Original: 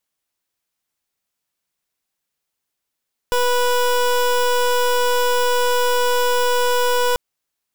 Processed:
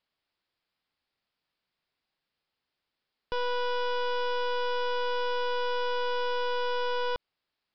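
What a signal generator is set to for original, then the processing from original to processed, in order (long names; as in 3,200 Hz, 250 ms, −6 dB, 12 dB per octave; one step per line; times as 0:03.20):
pulse wave 491 Hz, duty 23% −17 dBFS 3.84 s
brickwall limiter −28.5 dBFS
downsampling to 11,025 Hz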